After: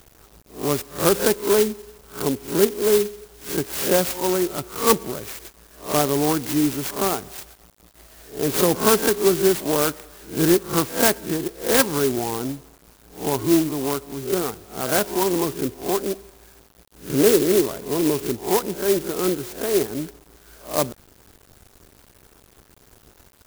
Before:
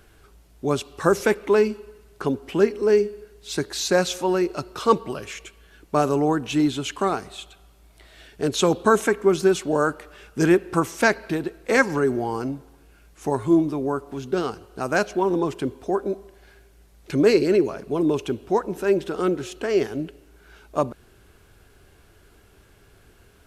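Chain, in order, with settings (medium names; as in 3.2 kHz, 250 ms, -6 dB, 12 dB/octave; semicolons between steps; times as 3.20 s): reverse spectral sustain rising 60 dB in 0.33 s; bit crusher 8-bit; sampling jitter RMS 0.12 ms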